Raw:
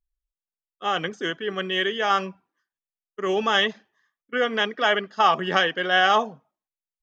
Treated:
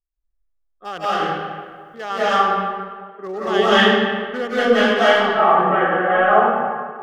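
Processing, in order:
adaptive Wiener filter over 15 samples
0:01.05–0:01.94: fill with room tone
0:03.47–0:04.58: low-shelf EQ 280 Hz +11 dB
0:05.15–0:06.25: Bessel low-pass filter 1,400 Hz, order 6
convolution reverb RT60 1.8 s, pre-delay 134 ms, DRR −12.5 dB
level −5 dB

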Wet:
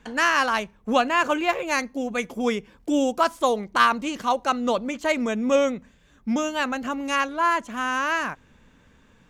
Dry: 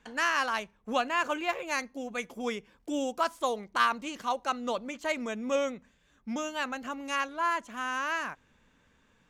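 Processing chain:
low-shelf EQ 450 Hz +5.5 dB
level +6.5 dB

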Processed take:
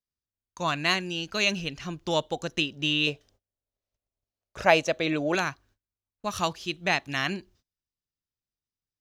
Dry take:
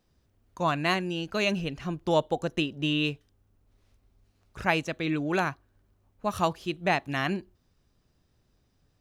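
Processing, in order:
0:03.07–0:05.35: parametric band 600 Hz +14.5 dB 0.95 octaves
noise gate −57 dBFS, range −27 dB
drawn EQ curve 750 Hz 0 dB, 6,200 Hz +12 dB, 8,800 Hz +4 dB
level −3 dB

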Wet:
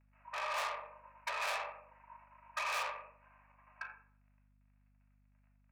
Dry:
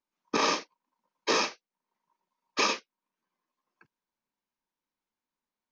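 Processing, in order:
mu-law and A-law mismatch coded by mu
Chebyshev low-pass filter 2,700 Hz, order 8
rectangular room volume 860 cubic metres, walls furnished, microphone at 2.8 metres
compressor whose output falls as the input rises −28 dBFS, ratio −0.5
soft clipping −38 dBFS, distortion −3 dB
Butterworth high-pass 590 Hz 48 dB per octave
mains hum 50 Hz, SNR 26 dB
level +5 dB

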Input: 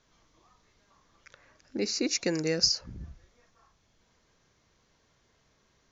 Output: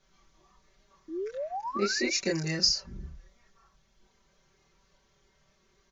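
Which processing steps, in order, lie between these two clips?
multi-voice chorus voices 6, 0.45 Hz, delay 26 ms, depth 1.7 ms
sound drawn into the spectrogram rise, 0:01.08–0:02.16, 300–2,500 Hz −38 dBFS
comb filter 5.2 ms, depth 99%

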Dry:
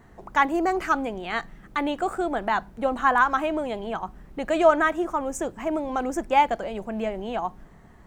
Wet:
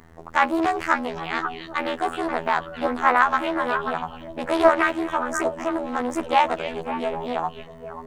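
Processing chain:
bit-depth reduction 12 bits, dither none
phases set to zero 82 Hz
echo through a band-pass that steps 267 ms, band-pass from 3,600 Hz, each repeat −1.4 octaves, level −3.5 dB
highs frequency-modulated by the lows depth 0.41 ms
level +4 dB

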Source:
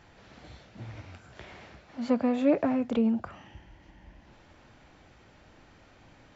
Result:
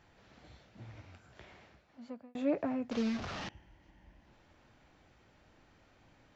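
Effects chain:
0:01.44–0:02.35: fade out
0:02.91–0:03.49: linear delta modulator 32 kbit/s, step −27 dBFS
level −8 dB

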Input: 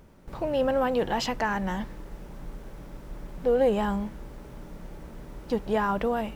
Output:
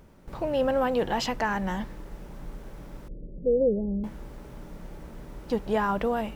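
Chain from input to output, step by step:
0:03.08–0:04.04: elliptic low-pass filter 530 Hz, stop band 60 dB

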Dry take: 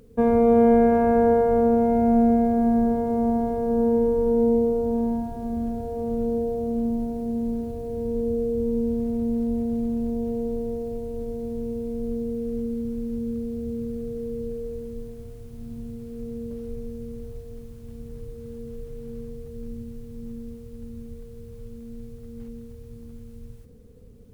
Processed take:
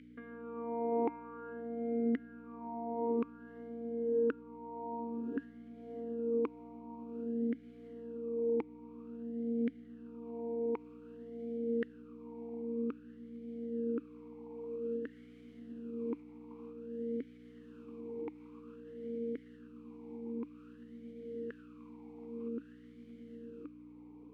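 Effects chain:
tilt shelving filter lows +7.5 dB, about 900 Hz
downward compressor 6 to 1, threshold −29 dBFS, peak gain reduction 19 dB
auto-filter high-pass saw down 0.93 Hz 410–1,700 Hz
mains hum 60 Hz, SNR 18 dB
formant filter swept between two vowels i-u 0.52 Hz
level +15.5 dB

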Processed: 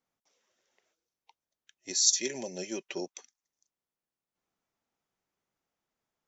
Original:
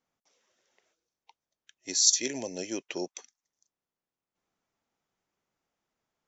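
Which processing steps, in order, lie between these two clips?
0:01.90–0:03.00: comb filter 5.2 ms, depth 59%
level −3 dB

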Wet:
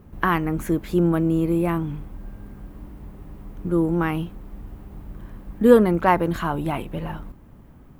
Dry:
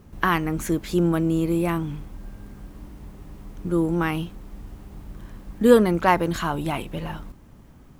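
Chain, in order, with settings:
parametric band 5,900 Hz −10.5 dB 2 octaves
level +1.5 dB

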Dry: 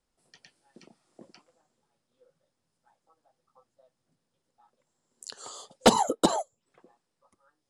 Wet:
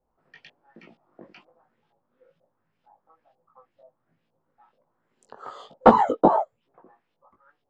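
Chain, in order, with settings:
auto-filter low-pass saw up 2.1 Hz 670–3,300 Hz
chorus effect 1.2 Hz, delay 17.5 ms, depth 2.7 ms
level +6.5 dB

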